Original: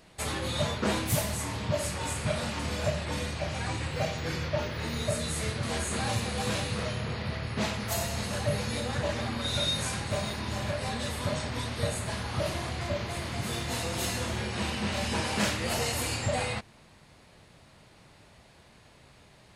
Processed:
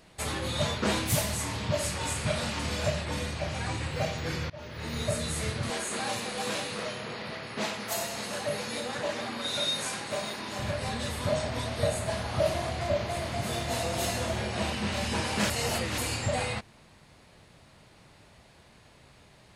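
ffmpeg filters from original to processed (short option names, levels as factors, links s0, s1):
-filter_complex "[0:a]asettb=1/sr,asplit=3[s0][s1][s2];[s0]atrim=end=0.614[s3];[s1]atrim=start=0.61:end=3.02,asetpts=PTS-STARTPTS,afade=t=in:d=0.004:c=qsin,afade=t=out:st=2.406:d=0.004:c=qsin,equalizer=f=4700:t=o:w=2.6:g=3[s4];[s2]atrim=start=3.016[s5];[s3][s4]acrossfade=d=0.004:c1=hsin:c2=qsin[s6];[s6][s5]acrossfade=d=0.004:c1=qsin:c2=hsin,asettb=1/sr,asplit=3[s7][s8][s9];[s7]atrim=end=5.704[s10];[s8]atrim=start=5.7:end=10.59,asetpts=PTS-STARTPTS,afade=t=in:d=0.004:c=qsin,afade=t=out:st=4.886:d=0.004:c=qsin,highpass=250[s11];[s9]atrim=start=10.586[s12];[s10][s11]acrossfade=d=0.004:c1=hsin:c2=qsin[s13];[s13][s12]acrossfade=d=0.004:c1=qsin:c2=hsin,asettb=1/sr,asplit=3[s14][s15][s16];[s14]atrim=end=11.284[s17];[s15]atrim=start=11.28:end=14.73,asetpts=PTS-STARTPTS,afade=t=in:d=0.004:c=qsin,afade=t=out:st=3.446:d=0.004:c=qsin,equalizer=f=650:t=o:w=0.36:g=9.5[s18];[s16]atrim=start=14.726[s19];[s17][s18]acrossfade=d=0.004:c1=hsin:c2=qsin[s20];[s20][s19]acrossfade=d=0.004:c1=qsin:c2=hsin,asplit=4[s21][s22][s23][s24];[s21]atrim=end=4.5,asetpts=PTS-STARTPTS,afade=t=out:st=4.496:d=0.004:c=hsin:silence=0.0749894[s25];[s22]atrim=start=4.5:end=15.502,asetpts=PTS-STARTPTS,afade=t=in:d=0.5:silence=0.0749894[s26];[s23]atrim=start=15.498:end=15.982,asetpts=PTS-STARTPTS,areverse[s27];[s24]atrim=start=15.978[s28];[s25][s26]concat=n=2:v=0:a=1[s29];[s29][s27]acrossfade=d=0.004:c1=hsin:c2=hsin[s30];[s30][s28]acrossfade=d=0.004:c1=hsin:c2=hsin"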